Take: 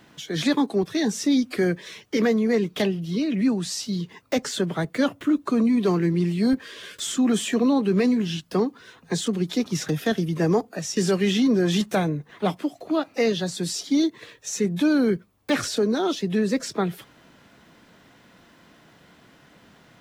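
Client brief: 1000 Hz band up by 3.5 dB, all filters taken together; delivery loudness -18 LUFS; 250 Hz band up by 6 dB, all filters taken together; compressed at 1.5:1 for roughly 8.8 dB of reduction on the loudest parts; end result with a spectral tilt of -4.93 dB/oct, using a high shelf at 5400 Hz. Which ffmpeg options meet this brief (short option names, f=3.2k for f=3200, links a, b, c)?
-af "equalizer=f=250:t=o:g=7,equalizer=f=1k:t=o:g=4,highshelf=f=5.4k:g=8.5,acompressor=threshold=-36dB:ratio=1.5,volume=8.5dB"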